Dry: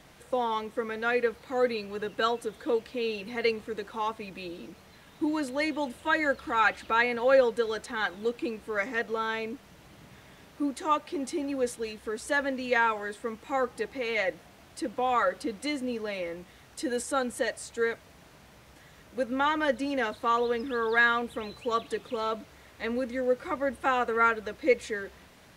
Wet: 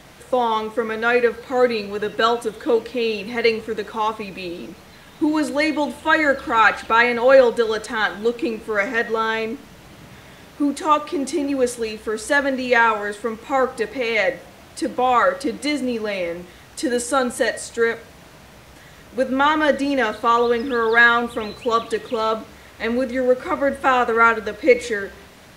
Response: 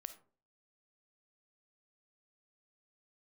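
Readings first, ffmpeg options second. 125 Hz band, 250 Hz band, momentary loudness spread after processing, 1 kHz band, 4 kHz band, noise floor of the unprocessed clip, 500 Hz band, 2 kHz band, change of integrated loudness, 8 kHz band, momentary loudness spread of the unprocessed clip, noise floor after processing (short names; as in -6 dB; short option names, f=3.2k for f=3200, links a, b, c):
+9.5 dB, +9.5 dB, 11 LU, +9.5 dB, +9.5 dB, -55 dBFS, +9.5 dB, +9.5 dB, +9.5 dB, +9.5 dB, 11 LU, -45 dBFS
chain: -filter_complex "[0:a]asplit=2[a][b];[1:a]atrim=start_sample=2205[c];[b][c]afir=irnorm=-1:irlink=0,volume=10.5dB[d];[a][d]amix=inputs=2:normalize=0"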